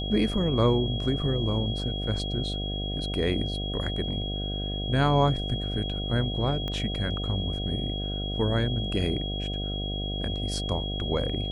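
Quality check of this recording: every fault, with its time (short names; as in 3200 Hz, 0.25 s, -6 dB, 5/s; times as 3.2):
buzz 50 Hz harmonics 15 -32 dBFS
tone 3300 Hz -34 dBFS
6.68 pop -20 dBFS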